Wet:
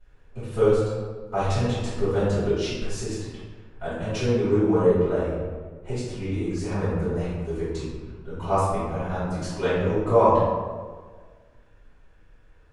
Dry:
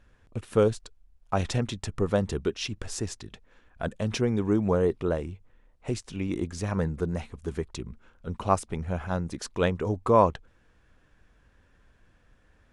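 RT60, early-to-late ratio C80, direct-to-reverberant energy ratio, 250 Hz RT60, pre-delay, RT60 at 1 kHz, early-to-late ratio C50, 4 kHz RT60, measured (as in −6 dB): 1.5 s, 1.5 dB, −16.0 dB, 1.6 s, 3 ms, 1.5 s, −3.0 dB, 0.85 s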